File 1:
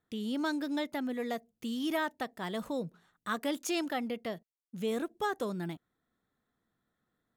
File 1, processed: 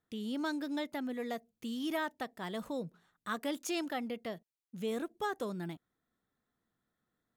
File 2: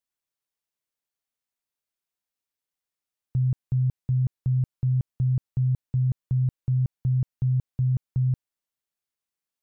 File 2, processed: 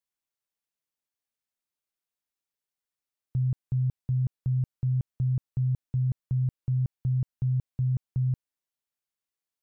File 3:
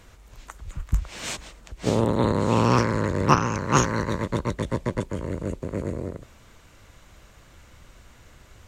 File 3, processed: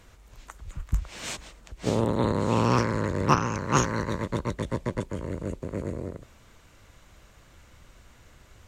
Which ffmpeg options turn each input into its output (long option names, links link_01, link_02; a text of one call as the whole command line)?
ffmpeg -i in.wav -af "asoftclip=type=hard:threshold=-3dB,volume=-3dB" out.wav